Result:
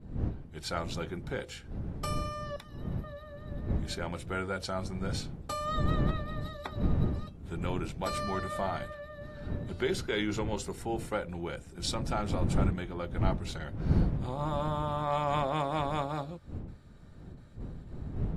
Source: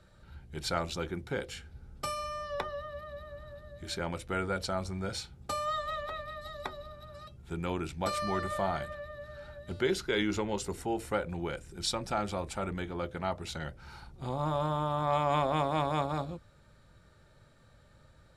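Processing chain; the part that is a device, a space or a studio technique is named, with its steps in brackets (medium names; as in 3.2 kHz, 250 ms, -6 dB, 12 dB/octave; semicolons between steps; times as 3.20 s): gate with hold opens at -51 dBFS; 2.56–3.04 s: differentiator; smartphone video outdoors (wind noise 150 Hz -33 dBFS; level rider gain up to 7.5 dB; trim -9 dB; AAC 48 kbps 44.1 kHz)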